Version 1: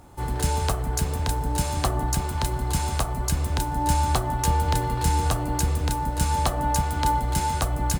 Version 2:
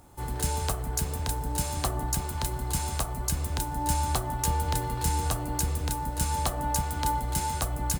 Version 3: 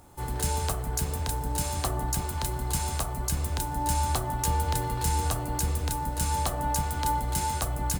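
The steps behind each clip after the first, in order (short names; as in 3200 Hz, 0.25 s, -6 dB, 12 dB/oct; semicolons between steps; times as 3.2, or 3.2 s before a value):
high shelf 7000 Hz +8 dB; gain -5.5 dB
notches 50/100/150/200/250/300 Hz; in parallel at +1.5 dB: limiter -17.5 dBFS, peak gain reduction 7 dB; on the sum: gain -5.5 dB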